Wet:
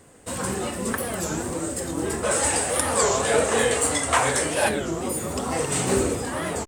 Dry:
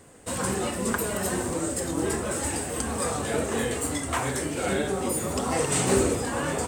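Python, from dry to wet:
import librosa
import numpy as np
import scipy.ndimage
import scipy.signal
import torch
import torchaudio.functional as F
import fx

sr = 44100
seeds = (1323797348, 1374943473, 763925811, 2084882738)

y = fx.spec_box(x, sr, start_s=2.24, length_s=2.47, low_hz=410.0, high_hz=11000.0, gain_db=8)
y = fx.record_warp(y, sr, rpm=33.33, depth_cents=250.0)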